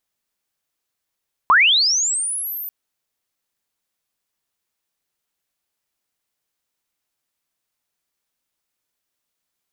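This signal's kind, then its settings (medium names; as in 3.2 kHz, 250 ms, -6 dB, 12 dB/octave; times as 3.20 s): sweep linear 960 Hz -> 14 kHz -8.5 dBFS -> -27 dBFS 1.19 s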